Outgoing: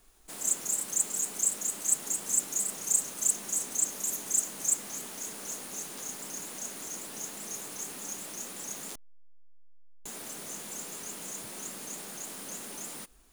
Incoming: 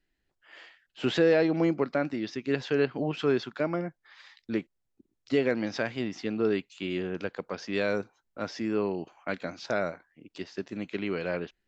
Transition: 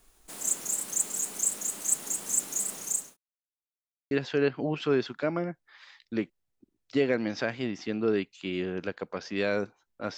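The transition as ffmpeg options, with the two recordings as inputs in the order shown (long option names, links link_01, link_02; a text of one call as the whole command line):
ffmpeg -i cue0.wav -i cue1.wav -filter_complex "[0:a]apad=whole_dur=10.17,atrim=end=10.17,asplit=2[link_01][link_02];[link_01]atrim=end=3.17,asetpts=PTS-STARTPTS,afade=type=out:start_time=2.67:duration=0.5:curve=qsin[link_03];[link_02]atrim=start=3.17:end=4.11,asetpts=PTS-STARTPTS,volume=0[link_04];[1:a]atrim=start=2.48:end=8.54,asetpts=PTS-STARTPTS,afade=type=in:duration=0.004:curve=hsin[link_05];[link_03][link_04][link_05]concat=n=3:v=0:a=1" out.wav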